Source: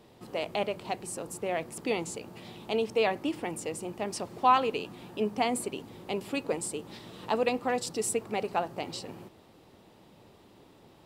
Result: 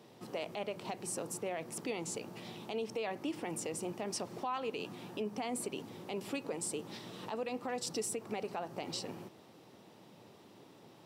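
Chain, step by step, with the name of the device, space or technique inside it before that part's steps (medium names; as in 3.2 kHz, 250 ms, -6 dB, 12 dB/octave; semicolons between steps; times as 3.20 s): broadcast voice chain (high-pass 110 Hz 24 dB/octave; de-esser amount 50%; compression 5:1, threshold -31 dBFS, peak gain reduction 13.5 dB; peaking EQ 5.7 kHz +5 dB 0.24 oct; peak limiter -27 dBFS, peak gain reduction 10 dB); trim -1 dB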